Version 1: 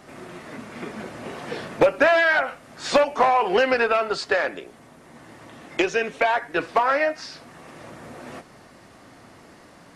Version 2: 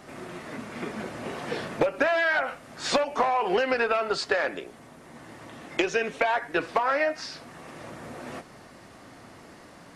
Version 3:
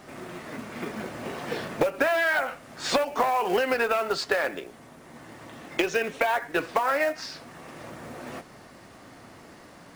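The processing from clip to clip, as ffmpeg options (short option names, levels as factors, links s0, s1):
-af "acompressor=threshold=0.1:ratio=10"
-af "acrusher=bits=5:mode=log:mix=0:aa=0.000001"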